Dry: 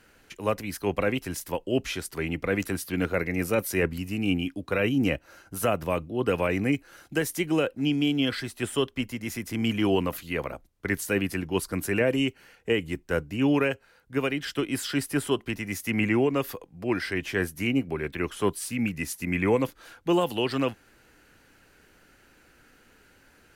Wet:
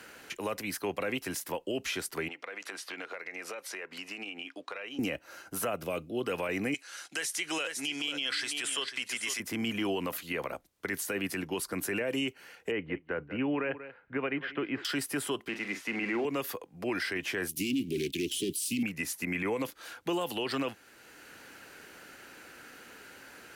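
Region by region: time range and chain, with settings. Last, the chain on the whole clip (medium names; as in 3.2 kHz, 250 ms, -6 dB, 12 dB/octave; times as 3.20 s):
2.28–4.99 s: band-pass 590–5900 Hz + compression 12:1, threshold -39 dBFS
5.76–6.23 s: peaking EQ 960 Hz -10 dB 0.41 oct + band-stop 1.8 kHz, Q 5.1
6.74–9.40 s: frequency weighting ITU-R 468 + delay 495 ms -13.5 dB + tape noise reduction on one side only decoder only
12.71–14.85 s: low-pass 2.3 kHz 24 dB/octave + delay 187 ms -19.5 dB
15.48–16.25 s: zero-crossing glitches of -26 dBFS + band-pass 250–2400 Hz + doubling 44 ms -11 dB
17.49–18.83 s: bass shelf 170 Hz -5.5 dB + waveshaping leveller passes 3 + Chebyshev band-stop 340–2900 Hz, order 3
whole clip: high-pass 350 Hz 6 dB/octave; peak limiter -23 dBFS; three bands compressed up and down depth 40%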